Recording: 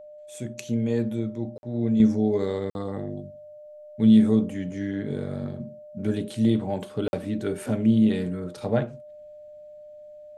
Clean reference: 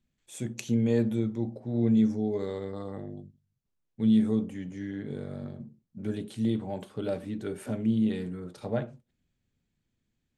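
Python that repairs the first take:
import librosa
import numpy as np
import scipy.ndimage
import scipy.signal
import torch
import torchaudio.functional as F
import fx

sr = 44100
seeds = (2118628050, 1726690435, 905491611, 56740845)

y = fx.notch(x, sr, hz=600.0, q=30.0)
y = fx.fix_interpolate(y, sr, at_s=(1.58, 2.7, 7.08), length_ms=51.0)
y = fx.gain(y, sr, db=fx.steps((0.0, 0.0), (2.0, -6.5)))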